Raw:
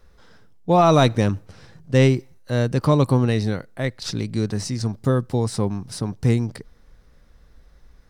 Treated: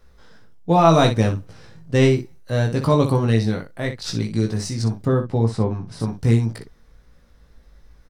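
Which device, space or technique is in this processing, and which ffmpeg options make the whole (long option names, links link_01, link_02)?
slapback doubling: -filter_complex "[0:a]asplit=3[link_01][link_02][link_03];[link_02]adelay=18,volume=-4dB[link_04];[link_03]adelay=61,volume=-9dB[link_05];[link_01][link_04][link_05]amix=inputs=3:normalize=0,asplit=3[link_06][link_07][link_08];[link_06]afade=type=out:start_time=5.04:duration=0.02[link_09];[link_07]aemphasis=mode=reproduction:type=75fm,afade=type=in:start_time=5.04:duration=0.02,afade=type=out:start_time=5.99:duration=0.02[link_10];[link_08]afade=type=in:start_time=5.99:duration=0.02[link_11];[link_09][link_10][link_11]amix=inputs=3:normalize=0,volume=-1dB"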